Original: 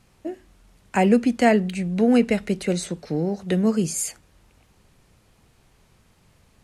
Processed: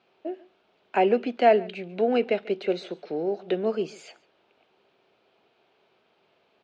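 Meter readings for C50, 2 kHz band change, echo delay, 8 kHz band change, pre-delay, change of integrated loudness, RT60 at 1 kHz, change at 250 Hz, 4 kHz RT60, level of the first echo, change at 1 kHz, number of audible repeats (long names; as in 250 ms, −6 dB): no reverb audible, −5.0 dB, 141 ms, below −25 dB, no reverb audible, −4.0 dB, no reverb audible, −10.5 dB, no reverb audible, −22.0 dB, +0.5 dB, 1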